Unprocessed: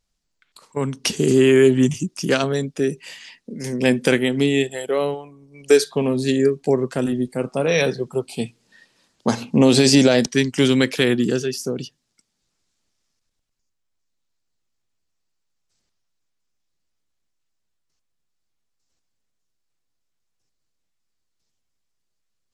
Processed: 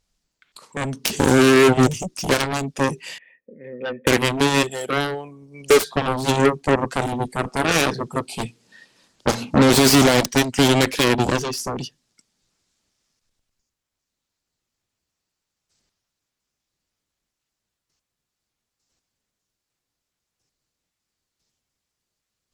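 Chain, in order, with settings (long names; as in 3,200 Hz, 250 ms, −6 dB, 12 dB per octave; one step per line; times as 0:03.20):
soft clipping −7 dBFS, distortion −19 dB
0:03.18–0:04.07: formant resonators in series e
harmonic generator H 7 −9 dB, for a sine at −7 dBFS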